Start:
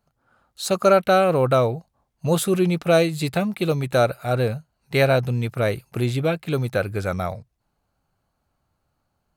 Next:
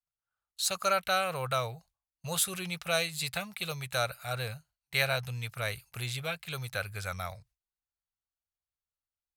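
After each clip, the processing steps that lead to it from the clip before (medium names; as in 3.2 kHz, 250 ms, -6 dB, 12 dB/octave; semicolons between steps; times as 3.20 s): gate with hold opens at -39 dBFS; amplifier tone stack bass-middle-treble 10-0-10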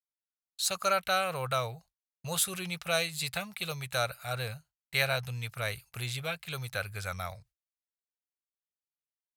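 gate with hold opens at -45 dBFS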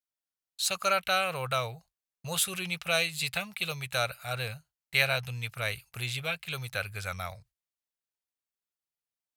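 dynamic bell 2.7 kHz, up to +6 dB, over -48 dBFS, Q 1.9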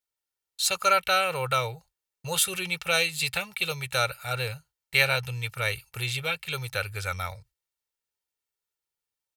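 comb 2.2 ms, depth 51%; trim +3 dB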